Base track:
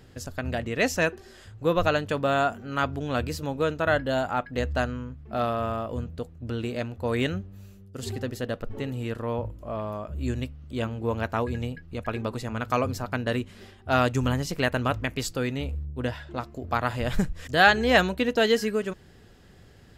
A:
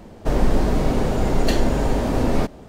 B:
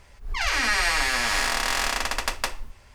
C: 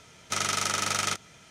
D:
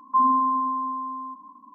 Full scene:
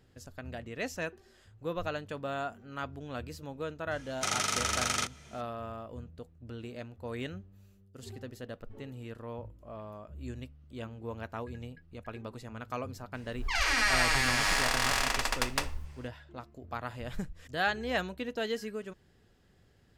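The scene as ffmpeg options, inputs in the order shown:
ffmpeg -i bed.wav -i cue0.wav -i cue1.wav -i cue2.wav -filter_complex "[0:a]volume=-12dB[link_01];[3:a]atrim=end=1.5,asetpts=PTS-STARTPTS,volume=-3dB,afade=type=in:duration=0.004:curve=hsin,afade=type=out:start_time=1.496:duration=0.004:curve=hsin,adelay=3910[link_02];[2:a]atrim=end=2.94,asetpts=PTS-STARTPTS,volume=-4dB,afade=type=in:duration=0.004:curve=hsin,afade=type=out:start_time=2.936:duration=0.004:curve=hsin,adelay=13140[link_03];[link_01][link_02][link_03]amix=inputs=3:normalize=0" out.wav

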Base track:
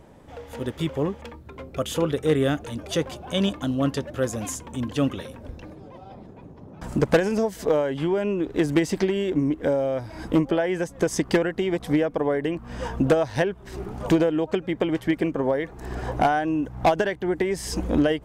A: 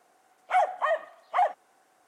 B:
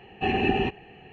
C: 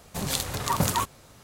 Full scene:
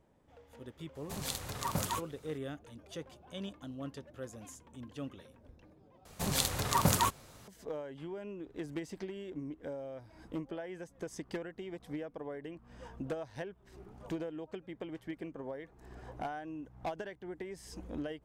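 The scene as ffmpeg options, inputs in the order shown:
ffmpeg -i bed.wav -i cue0.wav -i cue1.wav -i cue2.wav -filter_complex "[3:a]asplit=2[link_01][link_02];[0:a]volume=-19dB,asplit=2[link_03][link_04];[link_03]atrim=end=6.054[link_05];[link_02]atrim=end=1.43,asetpts=PTS-STARTPTS,volume=-3dB[link_06];[link_04]atrim=start=7.476[link_07];[link_01]atrim=end=1.43,asetpts=PTS-STARTPTS,volume=-10dB,afade=type=in:duration=0.004:curve=hsin,afade=type=out:start_time=1.426:duration=0.004:curve=hsin,adelay=950[link_08];[link_05][link_06]acrossfade=duration=0.004:curve1=hsin:curve2=hsin[link_09];[link_09][link_07]acrossfade=duration=0.004:curve1=hsin:curve2=hsin[link_10];[link_10][link_08]amix=inputs=2:normalize=0" out.wav

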